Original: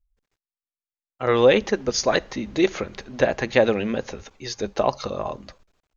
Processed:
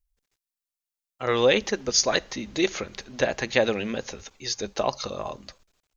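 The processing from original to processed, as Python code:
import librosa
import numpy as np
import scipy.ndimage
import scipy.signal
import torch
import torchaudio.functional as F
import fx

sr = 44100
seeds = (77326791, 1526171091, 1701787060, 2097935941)

y = fx.high_shelf(x, sr, hz=2900.0, db=11.5)
y = y * 10.0 ** (-5.0 / 20.0)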